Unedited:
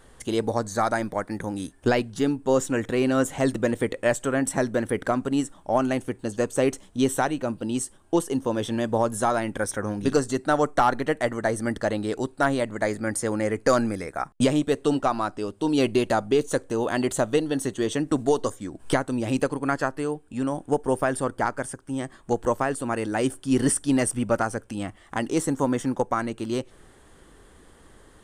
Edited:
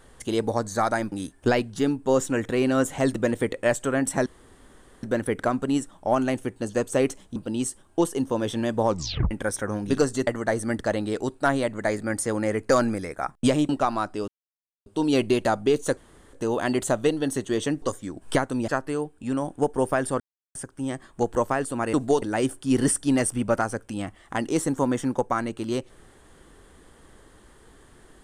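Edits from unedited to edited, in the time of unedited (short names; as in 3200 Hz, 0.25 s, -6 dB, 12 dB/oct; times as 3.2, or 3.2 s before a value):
1.12–1.52 cut
4.66 insert room tone 0.77 s
6.99–7.51 cut
9.02 tape stop 0.44 s
10.42–11.24 cut
14.66–14.92 cut
15.51 insert silence 0.58 s
16.62 insert room tone 0.36 s
18.11–18.4 move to 23.03
19.26–19.78 cut
21.3–21.65 mute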